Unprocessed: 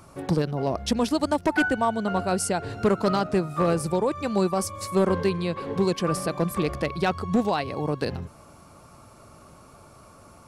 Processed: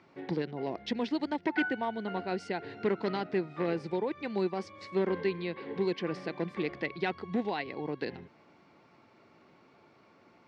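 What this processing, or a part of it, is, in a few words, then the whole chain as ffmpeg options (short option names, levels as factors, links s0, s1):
kitchen radio: -af "highpass=220,equalizer=f=350:t=q:w=4:g=3,equalizer=f=600:t=q:w=4:g=-7,equalizer=f=1200:t=q:w=4:g=-10,equalizer=f=2000:t=q:w=4:g=8,lowpass=f=4200:w=0.5412,lowpass=f=4200:w=1.3066,volume=0.473"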